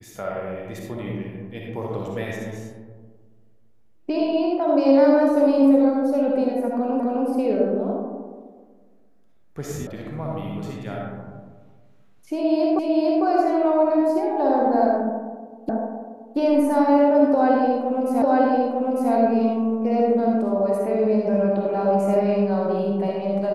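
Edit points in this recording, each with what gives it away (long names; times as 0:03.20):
0:07.00: the same again, the last 0.26 s
0:09.87: cut off before it has died away
0:12.79: the same again, the last 0.45 s
0:15.69: the same again, the last 0.68 s
0:18.22: the same again, the last 0.9 s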